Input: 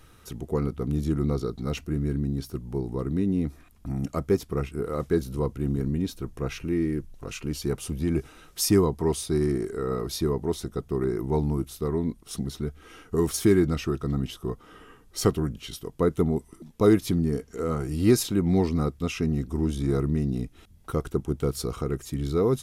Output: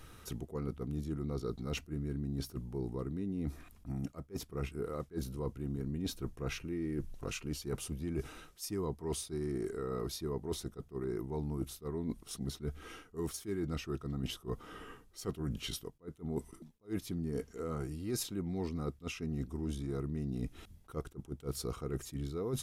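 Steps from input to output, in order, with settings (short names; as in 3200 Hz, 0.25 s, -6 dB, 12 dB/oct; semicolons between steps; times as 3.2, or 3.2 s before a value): reverse; compressor 10:1, threshold -34 dBFS, peak gain reduction 20 dB; reverse; attack slew limiter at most 330 dB/s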